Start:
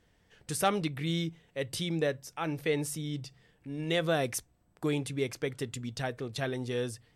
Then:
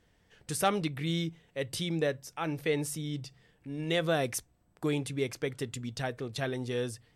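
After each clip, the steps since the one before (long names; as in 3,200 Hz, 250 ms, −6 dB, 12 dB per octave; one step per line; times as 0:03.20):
no processing that can be heard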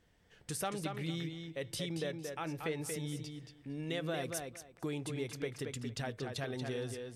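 downward compressor 2.5 to 1, threshold −35 dBFS, peak gain reduction 9.5 dB
on a send: tape delay 230 ms, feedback 21%, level −4 dB, low-pass 4,800 Hz
on the sum: level −2.5 dB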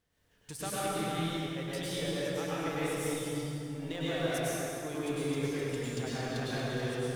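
mu-law and A-law mismatch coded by A
dense smooth reverb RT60 2.8 s, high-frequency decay 0.65×, pre-delay 90 ms, DRR −9 dB
level −1.5 dB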